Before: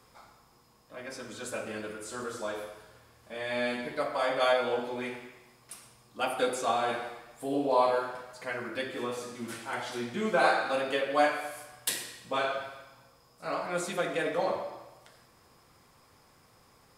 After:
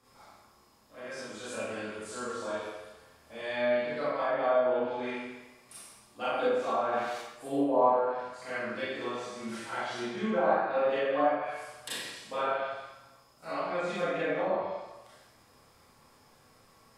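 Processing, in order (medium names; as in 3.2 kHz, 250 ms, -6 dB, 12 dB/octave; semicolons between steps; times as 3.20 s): 6.49–7.18 s: zero-crossing glitches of -27.5 dBFS; low-pass that closes with the level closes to 1.1 kHz, closed at -23.5 dBFS; Schroeder reverb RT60 0.72 s, combs from 28 ms, DRR -8 dB; trim -8 dB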